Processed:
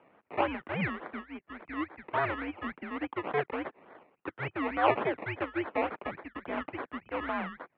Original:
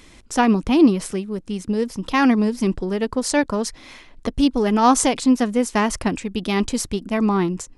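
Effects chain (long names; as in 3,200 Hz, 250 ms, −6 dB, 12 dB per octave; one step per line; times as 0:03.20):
sample-and-hold swept by an LFO 21×, swing 60% 3.5 Hz
single-sideband voice off tune −150 Hz 450–2,700 Hz
level −8 dB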